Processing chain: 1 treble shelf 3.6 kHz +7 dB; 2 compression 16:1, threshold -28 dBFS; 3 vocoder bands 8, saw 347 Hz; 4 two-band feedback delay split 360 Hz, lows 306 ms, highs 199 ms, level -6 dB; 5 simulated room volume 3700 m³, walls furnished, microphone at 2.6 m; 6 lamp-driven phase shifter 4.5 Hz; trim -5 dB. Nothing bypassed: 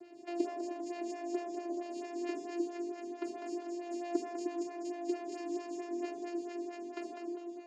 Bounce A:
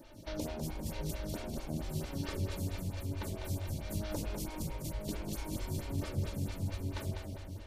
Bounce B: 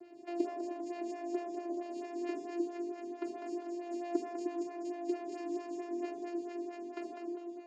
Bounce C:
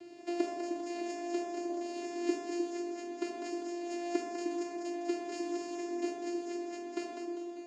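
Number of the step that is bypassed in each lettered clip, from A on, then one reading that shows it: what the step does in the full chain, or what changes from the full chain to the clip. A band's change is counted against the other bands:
3, 4 kHz band +12.0 dB; 1, 4 kHz band -4.0 dB; 6, loudness change +2.0 LU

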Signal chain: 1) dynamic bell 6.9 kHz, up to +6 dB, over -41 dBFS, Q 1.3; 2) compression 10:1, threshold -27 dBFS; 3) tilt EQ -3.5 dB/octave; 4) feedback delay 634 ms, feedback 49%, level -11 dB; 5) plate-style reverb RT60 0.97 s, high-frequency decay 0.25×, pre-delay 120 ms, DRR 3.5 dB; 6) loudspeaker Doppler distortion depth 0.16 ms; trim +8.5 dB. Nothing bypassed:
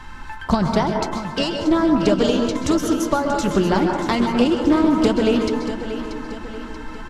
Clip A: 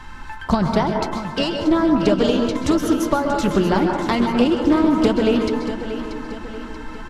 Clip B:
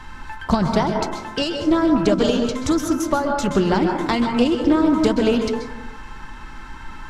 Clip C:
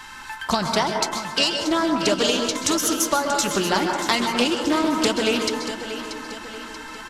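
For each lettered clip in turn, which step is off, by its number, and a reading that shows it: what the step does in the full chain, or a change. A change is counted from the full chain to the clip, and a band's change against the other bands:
1, 8 kHz band -3.0 dB; 4, momentary loudness spread change +7 LU; 3, 8 kHz band +11.5 dB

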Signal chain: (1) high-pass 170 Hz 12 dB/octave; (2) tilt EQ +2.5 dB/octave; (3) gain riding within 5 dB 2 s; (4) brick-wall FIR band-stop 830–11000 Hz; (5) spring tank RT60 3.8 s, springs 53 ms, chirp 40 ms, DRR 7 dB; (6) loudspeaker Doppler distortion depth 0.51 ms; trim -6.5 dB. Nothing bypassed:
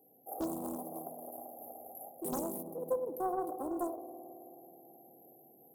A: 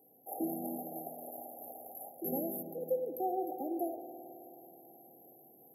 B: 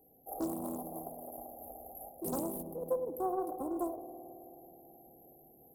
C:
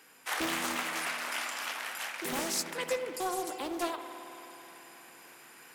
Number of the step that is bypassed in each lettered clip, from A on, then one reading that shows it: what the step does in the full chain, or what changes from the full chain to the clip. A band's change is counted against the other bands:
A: 6, 8 kHz band -3.5 dB; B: 1, 125 Hz band +3.0 dB; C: 4, 2 kHz band +28.5 dB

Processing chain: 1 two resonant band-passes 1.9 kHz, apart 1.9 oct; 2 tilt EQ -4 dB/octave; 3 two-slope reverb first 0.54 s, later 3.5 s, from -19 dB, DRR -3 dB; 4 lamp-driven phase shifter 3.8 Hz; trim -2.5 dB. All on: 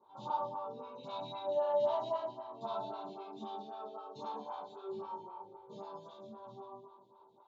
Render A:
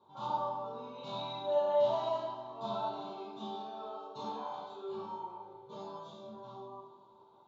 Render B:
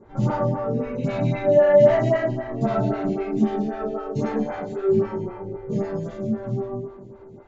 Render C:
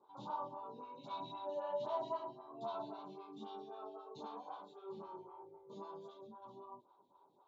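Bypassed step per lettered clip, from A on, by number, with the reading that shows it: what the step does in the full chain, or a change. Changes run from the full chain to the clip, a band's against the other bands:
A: 4, 4 kHz band +2.5 dB; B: 1, 1 kHz band -19.0 dB; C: 3, loudness change -6.5 LU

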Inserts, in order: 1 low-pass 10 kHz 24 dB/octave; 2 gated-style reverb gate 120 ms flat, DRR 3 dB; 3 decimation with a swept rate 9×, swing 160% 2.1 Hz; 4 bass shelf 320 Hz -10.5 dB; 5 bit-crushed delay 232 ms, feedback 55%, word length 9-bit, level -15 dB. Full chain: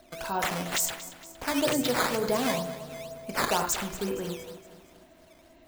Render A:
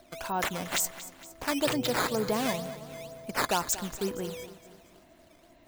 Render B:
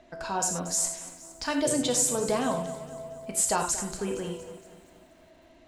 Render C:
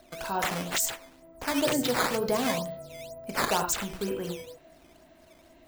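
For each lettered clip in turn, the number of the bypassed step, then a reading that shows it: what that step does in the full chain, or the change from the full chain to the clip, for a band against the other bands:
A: 2, loudness change -1.5 LU; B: 3, 8 kHz band +7.5 dB; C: 5, momentary loudness spread change +1 LU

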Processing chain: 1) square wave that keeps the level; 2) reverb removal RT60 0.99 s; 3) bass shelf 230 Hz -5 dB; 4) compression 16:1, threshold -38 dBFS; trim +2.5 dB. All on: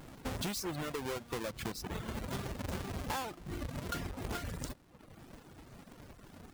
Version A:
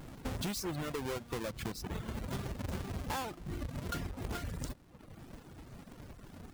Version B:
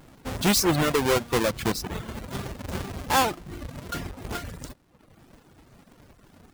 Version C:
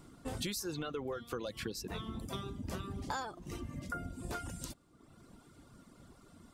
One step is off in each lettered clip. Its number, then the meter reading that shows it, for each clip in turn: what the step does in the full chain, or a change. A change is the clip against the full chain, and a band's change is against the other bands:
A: 3, 125 Hz band +2.5 dB; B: 4, mean gain reduction 6.0 dB; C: 1, distortion -6 dB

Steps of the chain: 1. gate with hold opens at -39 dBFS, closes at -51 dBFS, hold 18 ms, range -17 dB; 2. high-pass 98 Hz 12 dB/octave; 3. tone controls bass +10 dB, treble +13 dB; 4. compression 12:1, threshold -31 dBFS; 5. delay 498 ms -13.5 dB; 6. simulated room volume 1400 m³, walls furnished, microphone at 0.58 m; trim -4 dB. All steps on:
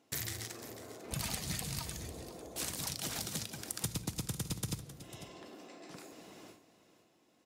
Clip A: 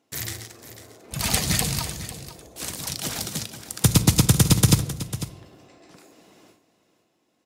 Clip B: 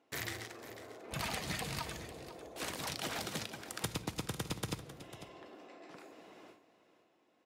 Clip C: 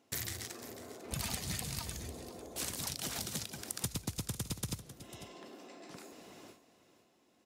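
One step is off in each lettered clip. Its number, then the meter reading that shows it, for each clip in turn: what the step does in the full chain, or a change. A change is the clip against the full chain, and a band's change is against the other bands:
4, mean gain reduction 9.5 dB; 3, 8 kHz band -7.0 dB; 6, echo-to-direct -10.0 dB to -13.5 dB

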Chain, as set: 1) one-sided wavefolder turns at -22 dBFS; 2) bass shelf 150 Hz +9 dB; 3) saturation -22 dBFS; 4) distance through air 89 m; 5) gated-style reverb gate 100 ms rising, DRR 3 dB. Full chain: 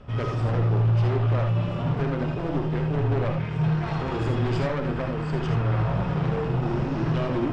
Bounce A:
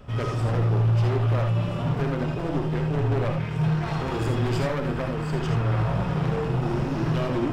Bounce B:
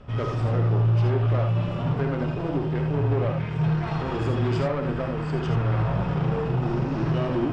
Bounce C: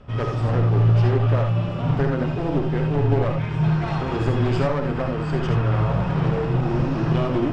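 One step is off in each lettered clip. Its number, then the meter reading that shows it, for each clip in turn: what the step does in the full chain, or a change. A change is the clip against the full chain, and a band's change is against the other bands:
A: 4, 4 kHz band +2.0 dB; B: 1, distortion -10 dB; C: 3, distortion -11 dB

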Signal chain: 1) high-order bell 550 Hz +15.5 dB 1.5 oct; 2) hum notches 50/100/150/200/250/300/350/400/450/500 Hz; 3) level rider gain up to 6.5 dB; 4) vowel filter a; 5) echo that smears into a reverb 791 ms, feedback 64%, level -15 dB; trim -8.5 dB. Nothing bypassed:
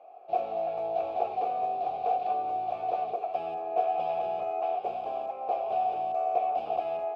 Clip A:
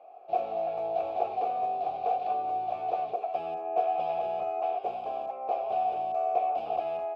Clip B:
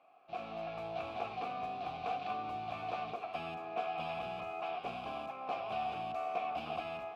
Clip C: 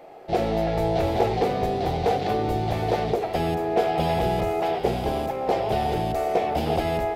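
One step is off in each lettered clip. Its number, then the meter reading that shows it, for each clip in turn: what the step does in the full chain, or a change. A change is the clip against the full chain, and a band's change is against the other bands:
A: 5, echo-to-direct -12.5 dB to none; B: 1, 2 kHz band +14.5 dB; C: 4, 250 Hz band +14.0 dB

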